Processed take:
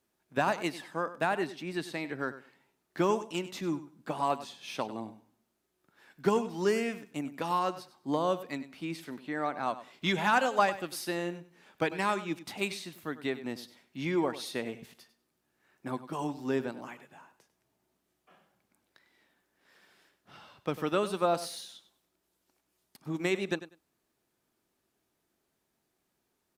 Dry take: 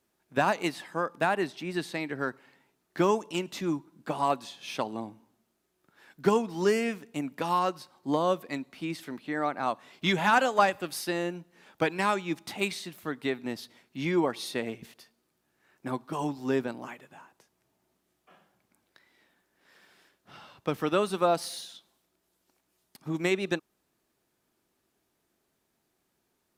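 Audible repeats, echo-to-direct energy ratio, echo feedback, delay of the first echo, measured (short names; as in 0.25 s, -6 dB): 2, -14.5 dB, 17%, 98 ms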